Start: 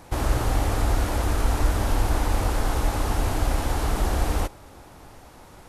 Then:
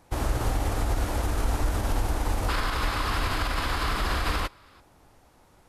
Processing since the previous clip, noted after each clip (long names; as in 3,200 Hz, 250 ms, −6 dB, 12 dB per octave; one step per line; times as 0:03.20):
gain on a spectral selection 0:02.49–0:04.80, 950–5,300 Hz +10 dB
brickwall limiter −15.5 dBFS, peak gain reduction 7.5 dB
expander for the loud parts 1.5 to 1, over −42 dBFS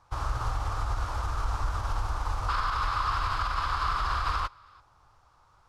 drawn EQ curve 120 Hz 0 dB, 230 Hz −15 dB, 340 Hz −11 dB, 690 Hz −4 dB, 1,200 Hz +10 dB, 1,900 Hz −5 dB, 5,300 Hz 0 dB, 13,000 Hz −16 dB
level −4 dB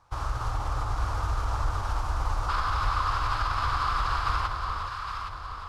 delay that swaps between a low-pass and a high-pass 408 ms, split 1,000 Hz, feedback 69%, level −2.5 dB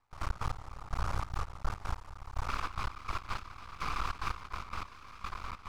speech leveller within 4 dB 2 s
half-wave rectification
gate pattern "..x.x....xxx.x" 146 BPM −12 dB
level −3 dB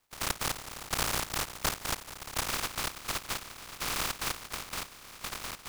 compressing power law on the bin magnitudes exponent 0.3